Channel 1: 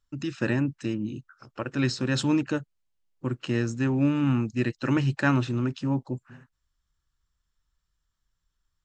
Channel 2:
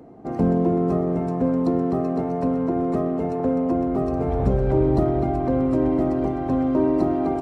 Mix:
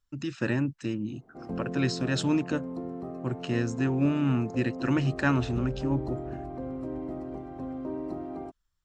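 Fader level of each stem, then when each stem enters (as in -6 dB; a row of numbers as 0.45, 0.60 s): -2.0, -15.0 dB; 0.00, 1.10 s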